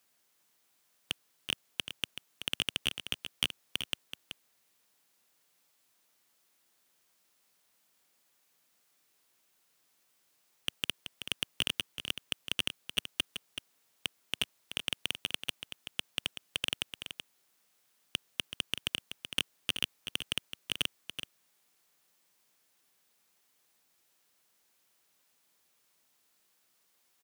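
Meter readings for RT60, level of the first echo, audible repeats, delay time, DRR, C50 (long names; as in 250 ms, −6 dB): no reverb audible, −9.5 dB, 1, 379 ms, no reverb audible, no reverb audible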